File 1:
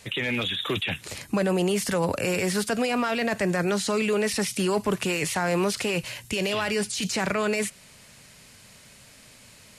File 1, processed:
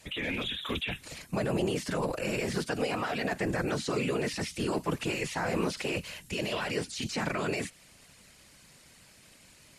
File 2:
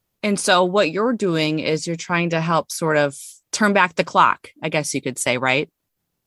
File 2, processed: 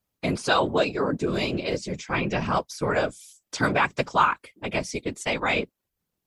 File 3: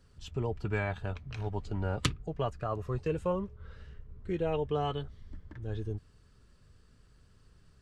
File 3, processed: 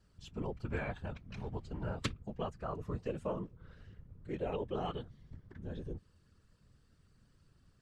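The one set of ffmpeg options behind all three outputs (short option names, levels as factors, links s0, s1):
-filter_complex "[0:a]afftfilt=real='hypot(re,im)*cos(2*PI*random(0))':imag='hypot(re,im)*sin(2*PI*random(1))':win_size=512:overlap=0.75,acrossover=split=6700[s0][s1];[s1]acompressor=threshold=0.00355:ratio=4:attack=1:release=60[s2];[s0][s2]amix=inputs=2:normalize=0"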